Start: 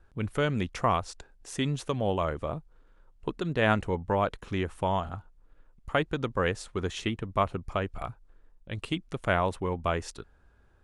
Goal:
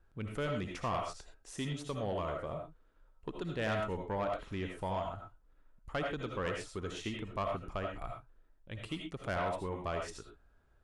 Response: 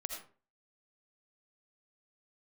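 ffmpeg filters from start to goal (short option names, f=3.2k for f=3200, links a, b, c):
-filter_complex "[1:a]atrim=start_sample=2205,atrim=end_sample=6174[a];[0:a][a]afir=irnorm=-1:irlink=0,asoftclip=type=tanh:threshold=-21.5dB,volume=-5.5dB"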